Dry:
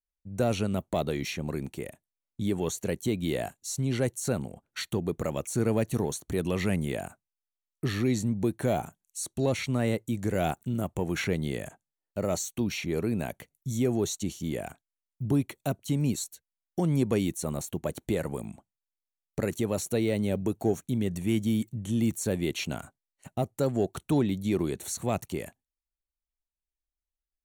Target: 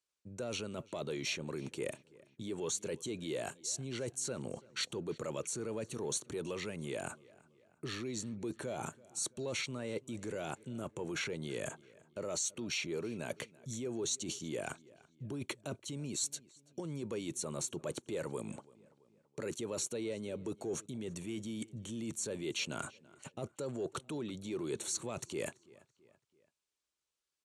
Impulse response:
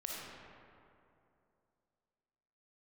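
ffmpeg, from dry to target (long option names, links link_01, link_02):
-filter_complex "[0:a]alimiter=level_in=1.5dB:limit=-24dB:level=0:latency=1:release=11,volume=-1.5dB,areverse,acompressor=threshold=-41dB:ratio=12,areverse,highpass=190,equalizer=frequency=190:width_type=q:width=4:gain=-8,equalizer=frequency=270:width_type=q:width=4:gain=-5,equalizer=frequency=730:width_type=q:width=4:gain=-10,equalizer=frequency=1900:width_type=q:width=4:gain=-6,lowpass=frequency=9000:width=0.5412,lowpass=frequency=9000:width=1.3066,asplit=2[link_01][link_02];[link_02]adelay=333,lowpass=frequency=4300:poles=1,volume=-22dB,asplit=2[link_03][link_04];[link_04]adelay=333,lowpass=frequency=4300:poles=1,volume=0.49,asplit=2[link_05][link_06];[link_06]adelay=333,lowpass=frequency=4300:poles=1,volume=0.49[link_07];[link_01][link_03][link_05][link_07]amix=inputs=4:normalize=0,volume=9.5dB"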